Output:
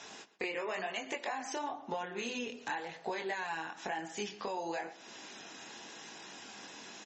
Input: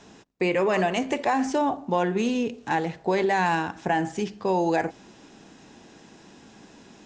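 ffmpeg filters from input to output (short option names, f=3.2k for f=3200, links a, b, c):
-filter_complex "[0:a]highpass=f=1.2k:p=1,acompressor=threshold=-42dB:ratio=6,flanger=delay=18:depth=6.9:speed=0.98,asplit=2[a][b];[b]adelay=124,lowpass=f=4.2k:p=1,volume=-16.5dB,asplit=2[c][d];[d]adelay=124,lowpass=f=4.2k:p=1,volume=0.23[e];[c][e]amix=inputs=2:normalize=0[f];[a][f]amix=inputs=2:normalize=0,volume=9.5dB" -ar 44100 -c:a libmp3lame -b:a 32k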